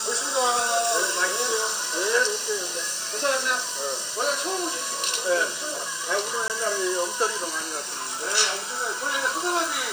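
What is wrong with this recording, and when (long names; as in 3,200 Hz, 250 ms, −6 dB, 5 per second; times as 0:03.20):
0:06.48–0:06.50: drop-out 18 ms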